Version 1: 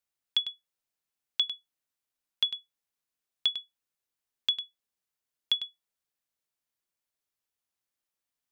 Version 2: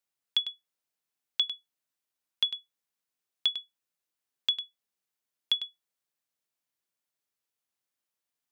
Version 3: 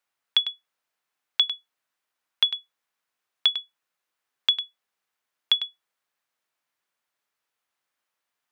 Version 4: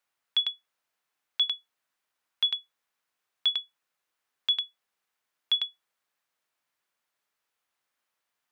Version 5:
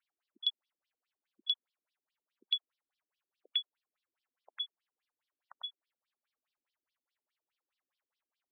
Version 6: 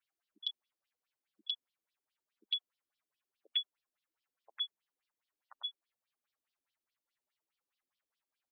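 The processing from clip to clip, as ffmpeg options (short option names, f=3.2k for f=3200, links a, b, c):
-af "highpass=100"
-af "equalizer=f=1.3k:w=0.41:g=11.5"
-af "alimiter=limit=-17.5dB:level=0:latency=1:release=14"
-af "afftfilt=real='re*between(b*sr/1024,260*pow(4200/260,0.5+0.5*sin(2*PI*4.8*pts/sr))/1.41,260*pow(4200/260,0.5+0.5*sin(2*PI*4.8*pts/sr))*1.41)':imag='im*between(b*sr/1024,260*pow(4200/260,0.5+0.5*sin(2*PI*4.8*pts/sr))/1.41,260*pow(4200/260,0.5+0.5*sin(2*PI*4.8*pts/sr))*1.41)':win_size=1024:overlap=0.75"
-filter_complex "[0:a]asplit=2[a][b];[b]adelay=7.6,afreqshift=3[c];[a][c]amix=inputs=2:normalize=1,volume=2dB"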